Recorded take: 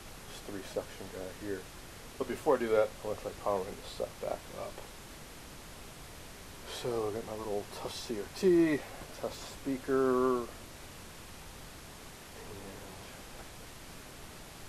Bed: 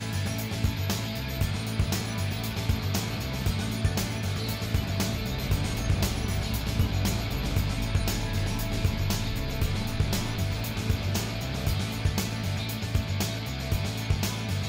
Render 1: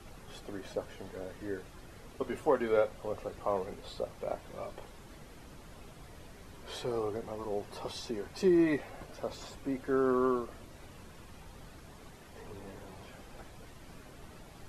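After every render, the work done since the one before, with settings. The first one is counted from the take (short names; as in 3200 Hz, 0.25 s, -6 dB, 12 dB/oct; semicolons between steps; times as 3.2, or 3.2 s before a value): denoiser 9 dB, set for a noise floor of -50 dBFS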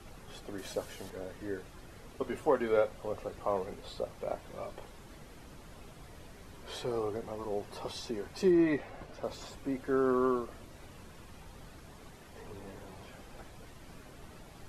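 0.58–1.1 high shelf 3400 Hz +10.5 dB; 8.51–9.24 high shelf 7300 Hz -9.5 dB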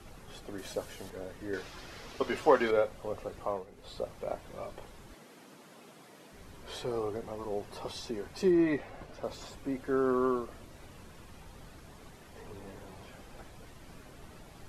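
1.53–2.71 EQ curve 140 Hz 0 dB, 5200 Hz +12 dB, 8500 Hz +2 dB; 3.43–3.96 dip -11 dB, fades 0.24 s; 5.14–6.33 HPF 180 Hz 24 dB/oct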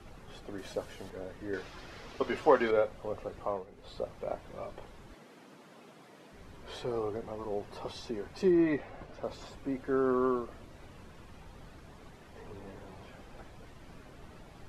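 LPF 3900 Hz 6 dB/oct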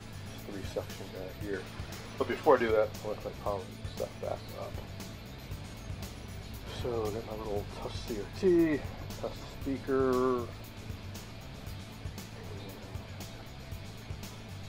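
add bed -15.5 dB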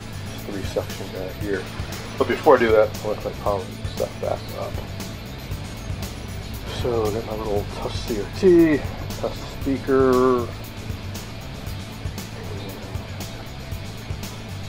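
gain +11.5 dB; limiter -2 dBFS, peak gain reduction 2.5 dB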